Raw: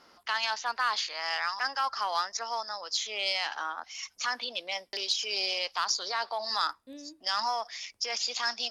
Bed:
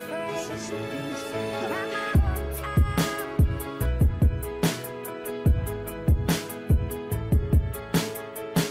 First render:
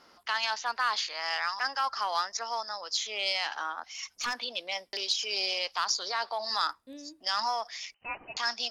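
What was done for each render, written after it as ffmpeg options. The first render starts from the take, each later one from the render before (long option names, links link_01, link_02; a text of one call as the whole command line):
ffmpeg -i in.wav -filter_complex "[0:a]asettb=1/sr,asplit=3[link_01][link_02][link_03];[link_01]atrim=end=3.974[link_04];[link_02]atrim=start=3.97:end=4.39,asetpts=PTS-STARTPTS,afade=type=in:duration=0.004:curve=qsin,afade=type=out:start_time=0.416:duration=0.004:curve=qsin,aeval=exprs='clip(val(0),-1,0.0422)':channel_layout=same[link_05];[link_03]atrim=start=4.386[link_06];[link_04][link_05]acrossfade=duration=0.004:curve1=hsin:curve2=qsin[link_07];[link_07][link_06]acrossfade=duration=0.004:curve1=qsin:curve2=hsin,asettb=1/sr,asplit=3[link_08][link_09][link_10];[link_08]atrim=end=7.944[link_11];[link_09]atrim=start=7.94:end=8.37,asetpts=PTS-STARTPTS,afade=type=in:duration=0.004:curve=qsin,afade=type=out:start_time=0.426:duration=0.004:curve=qsin,lowpass=frequency=2600:width_type=q:width=0.5098,lowpass=frequency=2600:width_type=q:width=0.6013,lowpass=frequency=2600:width_type=q:width=0.9,lowpass=frequency=2600:width_type=q:width=2.563,afreqshift=-3100[link_12];[link_10]atrim=start=8.366[link_13];[link_11][link_12]acrossfade=duration=0.004:curve1=hsin:curve2=qsin[link_14];[link_14][link_13]acrossfade=duration=0.004:curve1=qsin:curve2=hsin" out.wav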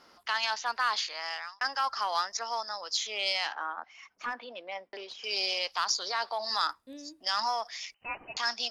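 ffmpeg -i in.wav -filter_complex "[0:a]asettb=1/sr,asplit=3[link_01][link_02][link_03];[link_01]atrim=end=3.524[link_04];[link_02]atrim=start=3.52:end=5.24,asetpts=PTS-STARTPTS,afade=type=in:duration=0.004:curve=qsin,afade=type=out:start_time=1.716:duration=0.004:curve=qsin,acrossover=split=160 2200:gain=0.251 1 0.0794[link_05][link_06][link_07];[link_05][link_06][link_07]amix=inputs=3:normalize=0[link_08];[link_03]atrim=start=5.236[link_09];[link_04][link_08]acrossfade=duration=0.004:curve1=hsin:curve2=qsin[link_10];[link_10][link_09]acrossfade=duration=0.004:curve1=qsin:curve2=hsin,asplit=2[link_11][link_12];[link_11]atrim=end=1.61,asetpts=PTS-STARTPTS,afade=type=out:start_time=0.88:duration=0.73:curve=qsin[link_13];[link_12]atrim=start=1.61,asetpts=PTS-STARTPTS,afade=type=in:duration=0.004:curve=hsin[link_14];[link_13][link_14]concat=n=2:v=0:a=1" out.wav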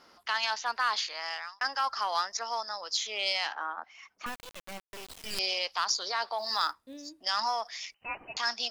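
ffmpeg -i in.wav -filter_complex "[0:a]asettb=1/sr,asplit=3[link_01][link_02][link_03];[link_01]atrim=end=4.264[link_04];[link_02]atrim=start=4.26:end=5.39,asetpts=PTS-STARTPTS,afade=type=in:duration=0.004:curve=qsin,afade=type=out:start_time=1.126:duration=0.004:curve=qsin,acrusher=bits=4:dc=4:mix=0:aa=0.000001[link_05];[link_03]atrim=start=5.386[link_06];[link_04][link_05]acrossfade=duration=0.004:curve1=hsin:curve2=qsin[link_07];[link_07][link_06]acrossfade=duration=0.004:curve1=qsin:curve2=hsin,asettb=1/sr,asplit=3[link_08][link_09][link_10];[link_08]atrim=end=6.384[link_11];[link_09]atrim=start=6.38:end=7.1,asetpts=PTS-STARTPTS,afade=type=in:duration=0.004:curve=qsin,afade=type=out:start_time=0.716:duration=0.004:curve=qsin,acrusher=bits=7:mode=log:mix=0:aa=0.000001[link_12];[link_10]atrim=start=7.096[link_13];[link_11][link_12]acrossfade=duration=0.004:curve1=hsin:curve2=qsin[link_14];[link_14][link_13]acrossfade=duration=0.004:curve1=qsin:curve2=hsin" out.wav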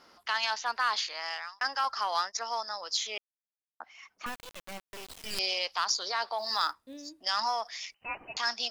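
ffmpeg -i in.wav -filter_complex "[0:a]asettb=1/sr,asplit=3[link_01][link_02][link_03];[link_01]atrim=end=1.844[link_04];[link_02]atrim=start=1.84:end=2.52,asetpts=PTS-STARTPTS,afade=type=in:duration=0.004:curve=qsin,afade=type=out:start_time=0.676:duration=0.004:curve=qsin,agate=range=-33dB:threshold=-39dB:ratio=3:release=100:detection=peak[link_05];[link_03]atrim=start=2.516[link_06];[link_04][link_05]acrossfade=duration=0.004:curve1=hsin:curve2=qsin[link_07];[link_07][link_06]acrossfade=duration=0.004:curve1=qsin:curve2=hsin,asplit=3[link_08][link_09][link_10];[link_08]atrim=end=3.18,asetpts=PTS-STARTPTS,afade=type=out:start_time=3.176:duration=0.004:curve=hsin[link_11];[link_09]atrim=start=3.18:end=3.8,asetpts=PTS-STARTPTS,volume=0[link_12];[link_10]atrim=start=3.8,asetpts=PTS-STARTPTS,afade=type=in:duration=0.004:curve=hsin[link_13];[link_11][link_12][link_13]concat=n=3:v=0:a=1" out.wav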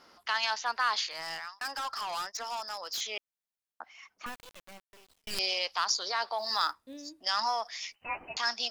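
ffmpeg -i in.wav -filter_complex "[0:a]asettb=1/sr,asplit=3[link_01][link_02][link_03];[link_01]atrim=end=1.114[link_04];[link_02]atrim=start=1.11:end=3.01,asetpts=PTS-STARTPTS,afade=type=in:duration=0.004:curve=qsin,afade=type=out:start_time=1.896:duration=0.004:curve=qsin,volume=32dB,asoftclip=hard,volume=-32dB[link_05];[link_03]atrim=start=3.006[link_06];[link_04][link_05]acrossfade=duration=0.004:curve1=hsin:curve2=qsin[link_07];[link_07][link_06]acrossfade=duration=0.004:curve1=qsin:curve2=hsin,asettb=1/sr,asplit=3[link_08][link_09][link_10];[link_08]atrim=end=7.814[link_11];[link_09]atrim=start=7.81:end=8.35,asetpts=PTS-STARTPTS,afade=type=in:duration=0.004:curve=qsin,afade=type=out:start_time=0.536:duration=0.004:curve=qsin,asplit=2[link_12][link_13];[link_13]adelay=12,volume=-4dB[link_14];[link_12][link_14]amix=inputs=2:normalize=0,atrim=end_sample=23814[link_15];[link_10]atrim=start=8.346[link_16];[link_11][link_15]acrossfade=duration=0.004:curve1=hsin:curve2=qsin[link_17];[link_17][link_16]acrossfade=duration=0.004:curve1=qsin:curve2=hsin,asplit=2[link_18][link_19];[link_18]atrim=end=5.27,asetpts=PTS-STARTPTS,afade=type=out:start_time=3.91:duration=1.36[link_20];[link_19]atrim=start=5.27,asetpts=PTS-STARTPTS,afade=type=in:duration=0.004:curve=hsin[link_21];[link_20][link_21]concat=n=2:v=0:a=1" out.wav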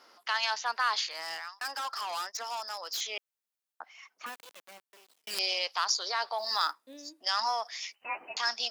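ffmpeg -i in.wav -af "highpass=340,highshelf=frequency=10000:gain=3" out.wav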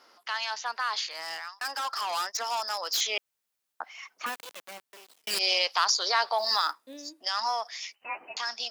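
ffmpeg -i in.wav -af "alimiter=limit=-20dB:level=0:latency=1:release=80,dynaudnorm=framelen=200:gausssize=21:maxgain=7.5dB" out.wav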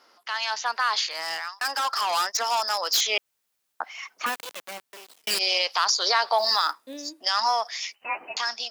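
ffmpeg -i in.wav -af "dynaudnorm=framelen=160:gausssize=5:maxgain=6dB,alimiter=limit=-11.5dB:level=0:latency=1:release=117" out.wav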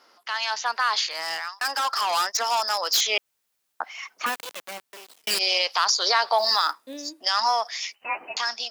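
ffmpeg -i in.wav -af "volume=1dB" out.wav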